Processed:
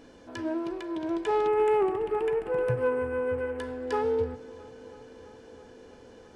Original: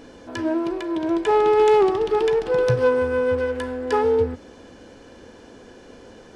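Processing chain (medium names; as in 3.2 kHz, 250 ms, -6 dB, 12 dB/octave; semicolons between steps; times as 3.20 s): 1.47–3.59 s: high-order bell 4.7 kHz -15 dB 1.2 oct; filtered feedback delay 330 ms, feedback 80%, low-pass 4.6 kHz, level -21.5 dB; trim -8 dB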